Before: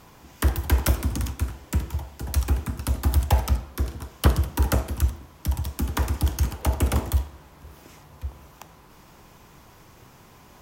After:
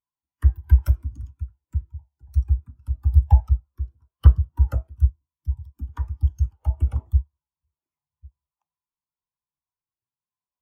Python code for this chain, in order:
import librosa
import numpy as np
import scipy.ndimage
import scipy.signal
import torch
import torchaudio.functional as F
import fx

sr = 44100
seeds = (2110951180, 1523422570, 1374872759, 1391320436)

y = fx.tilt_shelf(x, sr, db=-5.0, hz=700.0)
y = fx.spectral_expand(y, sr, expansion=2.5)
y = F.gain(torch.from_numpy(y), 3.5).numpy()